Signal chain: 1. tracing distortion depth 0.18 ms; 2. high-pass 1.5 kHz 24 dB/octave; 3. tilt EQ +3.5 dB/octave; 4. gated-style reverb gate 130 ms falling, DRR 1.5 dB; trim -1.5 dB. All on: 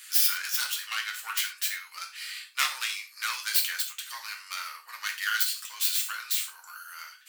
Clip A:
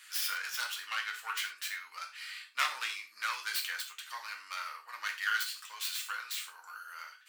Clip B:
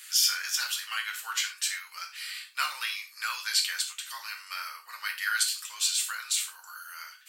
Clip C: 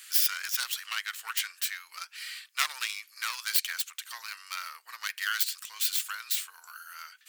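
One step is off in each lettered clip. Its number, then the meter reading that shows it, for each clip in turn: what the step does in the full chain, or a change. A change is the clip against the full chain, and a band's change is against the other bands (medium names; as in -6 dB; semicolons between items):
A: 3, 8 kHz band -7.5 dB; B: 1, crest factor change -2.0 dB; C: 4, crest factor change +2.5 dB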